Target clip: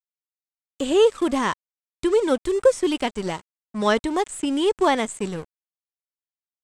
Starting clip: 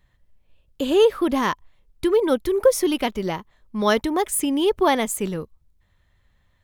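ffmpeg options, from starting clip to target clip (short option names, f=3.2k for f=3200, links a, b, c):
-filter_complex "[0:a]aeval=exprs='sgn(val(0))*max(abs(val(0))-0.0141,0)':c=same,lowpass=f=8k:t=q:w=7.5,acrossover=split=3700[a][b];[b]acompressor=threshold=-36dB:ratio=4:attack=1:release=60[c];[a][c]amix=inputs=2:normalize=0"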